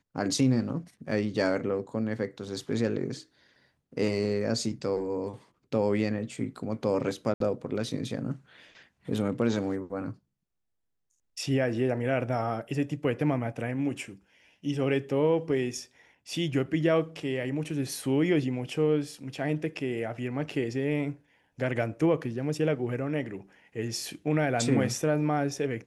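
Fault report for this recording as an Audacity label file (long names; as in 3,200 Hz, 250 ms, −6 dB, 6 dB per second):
7.340000	7.400000	drop-out 63 ms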